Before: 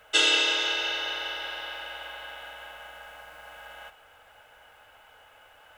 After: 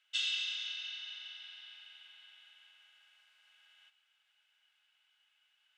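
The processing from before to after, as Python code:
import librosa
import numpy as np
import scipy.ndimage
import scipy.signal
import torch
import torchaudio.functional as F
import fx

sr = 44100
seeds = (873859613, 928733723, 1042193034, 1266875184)

y = fx.ladder_bandpass(x, sr, hz=4100.0, resonance_pct=25)
y = y * 10.0 ** (-2.0 / 20.0)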